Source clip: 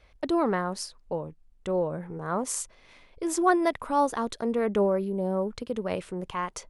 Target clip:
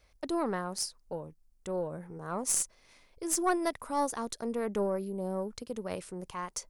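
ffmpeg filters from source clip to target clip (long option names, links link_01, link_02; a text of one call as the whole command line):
ffmpeg -i in.wav -af "aexciter=amount=4.3:drive=1.2:freq=4600,aeval=exprs='0.631*(cos(1*acos(clip(val(0)/0.631,-1,1)))-cos(1*PI/2))+0.0562*(cos(4*acos(clip(val(0)/0.631,-1,1)))-cos(4*PI/2))':channel_layout=same,volume=-7dB" out.wav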